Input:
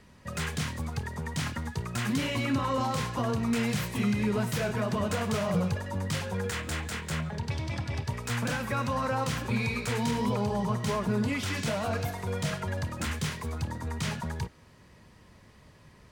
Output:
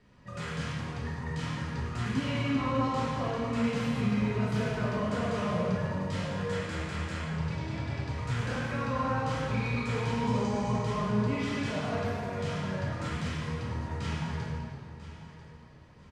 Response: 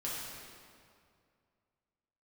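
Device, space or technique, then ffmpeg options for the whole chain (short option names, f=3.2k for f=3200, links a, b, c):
swimming-pool hall: -filter_complex "[0:a]lowpass=7.7k,asettb=1/sr,asplit=3[a][b][c];[a]atrim=end=10.274[d];[b]atrim=start=10.27:end=10.76,asetpts=PTS-STARTPTS,afade=t=in:d=0.004:c=qsin,afade=t=out:st=0.486:d=0.004:c=qsin,equalizer=f=6.9k:t=o:w=0.8:g=14[e];[c]atrim=start=10.756[f];[d][e]acrossfade=d=0.004:c1=hsin:c2=qsin[g];[g][f]acrossfade=d=0.004:c1=qsin:c2=hsin[h];[1:a]atrim=start_sample=2205[i];[h][i]afir=irnorm=-1:irlink=0,highshelf=f=5.6k:g=-7.5,aecho=1:1:992|1984|2976:0.178|0.0516|0.015,volume=-4.5dB"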